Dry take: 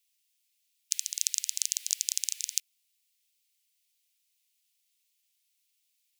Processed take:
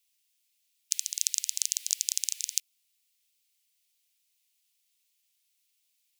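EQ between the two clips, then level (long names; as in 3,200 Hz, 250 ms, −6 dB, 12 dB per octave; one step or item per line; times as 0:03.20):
dynamic equaliser 1,400 Hz, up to −4 dB, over −58 dBFS, Q 1.1
+1.0 dB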